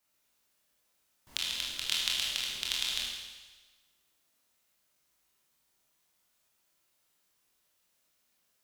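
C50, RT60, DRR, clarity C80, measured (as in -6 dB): 0.5 dB, 1.3 s, -4.5 dB, 2.5 dB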